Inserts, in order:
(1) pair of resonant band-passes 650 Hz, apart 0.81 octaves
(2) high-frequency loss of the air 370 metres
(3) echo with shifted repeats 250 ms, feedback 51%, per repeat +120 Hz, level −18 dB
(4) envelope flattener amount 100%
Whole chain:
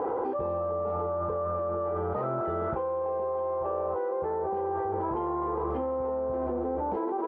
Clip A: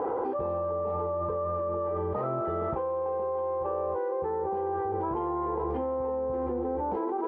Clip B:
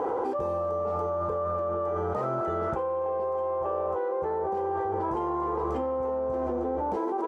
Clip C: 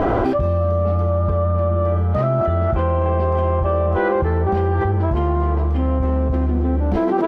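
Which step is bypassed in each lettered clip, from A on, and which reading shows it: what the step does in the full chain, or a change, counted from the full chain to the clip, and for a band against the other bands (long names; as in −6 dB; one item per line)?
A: 3, 2 kHz band −1.5 dB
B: 2, 2 kHz band +2.0 dB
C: 1, 125 Hz band +12.5 dB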